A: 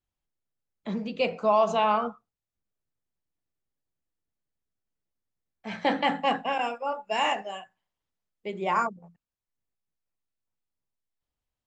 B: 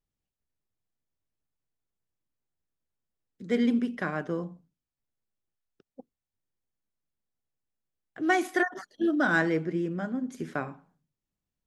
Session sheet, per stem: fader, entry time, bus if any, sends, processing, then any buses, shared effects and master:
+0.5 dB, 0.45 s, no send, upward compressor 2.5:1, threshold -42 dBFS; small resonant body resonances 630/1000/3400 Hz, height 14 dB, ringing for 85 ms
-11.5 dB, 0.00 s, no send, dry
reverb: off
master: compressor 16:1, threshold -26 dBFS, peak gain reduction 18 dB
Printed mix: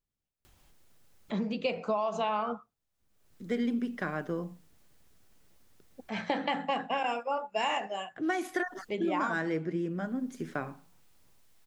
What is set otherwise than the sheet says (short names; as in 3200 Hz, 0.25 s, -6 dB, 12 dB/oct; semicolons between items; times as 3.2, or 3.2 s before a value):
stem A: missing small resonant body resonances 630/1000/3400 Hz, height 14 dB, ringing for 85 ms; stem B -11.5 dB -> -2.0 dB